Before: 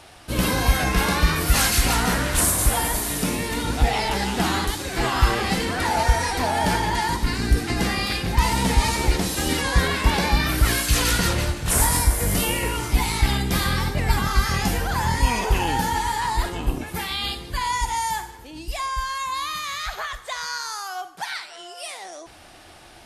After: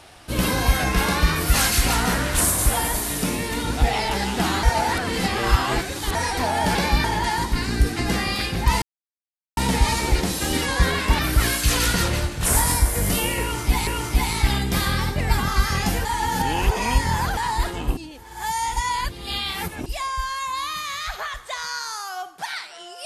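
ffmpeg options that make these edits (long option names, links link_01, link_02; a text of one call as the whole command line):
ffmpeg -i in.wav -filter_complex "[0:a]asplit=12[link_01][link_02][link_03][link_04][link_05][link_06][link_07][link_08][link_09][link_10][link_11][link_12];[link_01]atrim=end=4.632[link_13];[link_02]atrim=start=4.628:end=6.152,asetpts=PTS-STARTPTS,areverse[link_14];[link_03]atrim=start=6.148:end=6.752[link_15];[link_04]atrim=start=10.148:end=10.442[link_16];[link_05]atrim=start=6.748:end=8.53,asetpts=PTS-STARTPTS,afade=type=out:start_time=1.778:duration=0.004:curve=hsin,apad=pad_dur=0.75[link_17];[link_06]atrim=start=8.53:end=10.152,asetpts=PTS-STARTPTS,afade=type=in:duration=0.004:curve=hsin[link_18];[link_07]atrim=start=10.438:end=13.122[link_19];[link_08]atrim=start=12.658:end=14.842[link_20];[link_09]atrim=start=14.838:end=16.162,asetpts=PTS-STARTPTS,areverse[link_21];[link_10]atrim=start=16.158:end=16.762[link_22];[link_11]atrim=start=16.758:end=18.652,asetpts=PTS-STARTPTS,areverse[link_23];[link_12]atrim=start=18.648[link_24];[link_13][link_14]acrossfade=duration=0.004:curve1=hsin:curve2=hsin[link_25];[link_25][link_15]acrossfade=duration=0.004:curve1=hsin:curve2=hsin[link_26];[link_26][link_16]acrossfade=duration=0.004:curve1=hsin:curve2=hsin[link_27];[link_17][link_18]concat=n=2:v=0:a=1[link_28];[link_27][link_28]acrossfade=duration=0.004:curve1=hsin:curve2=hsin[link_29];[link_29][link_19]acrossfade=duration=0.004:curve1=hsin:curve2=hsin[link_30];[link_30][link_20]acrossfade=duration=0.004:curve1=hsin:curve2=hsin[link_31];[link_31][link_21]acrossfade=duration=0.004:curve1=hsin:curve2=hsin[link_32];[link_32][link_22]acrossfade=duration=0.004:curve1=hsin:curve2=hsin[link_33];[link_33][link_23]acrossfade=duration=0.004:curve1=hsin:curve2=hsin[link_34];[link_34][link_24]acrossfade=duration=0.004:curve1=hsin:curve2=hsin" out.wav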